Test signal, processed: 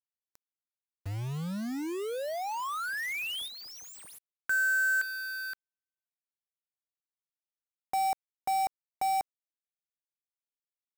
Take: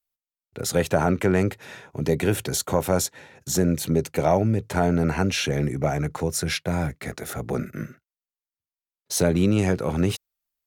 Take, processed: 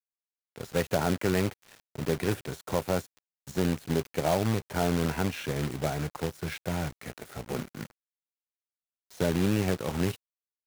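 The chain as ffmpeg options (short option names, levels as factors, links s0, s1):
-filter_complex "[0:a]acrossover=split=2900[s0][s1];[s1]acompressor=threshold=0.01:ratio=4:attack=1:release=60[s2];[s0][s2]amix=inputs=2:normalize=0,acrusher=bits=2:mode=log:mix=0:aa=0.000001,aeval=exprs='sgn(val(0))*max(abs(val(0))-0.0112,0)':c=same,volume=0.501"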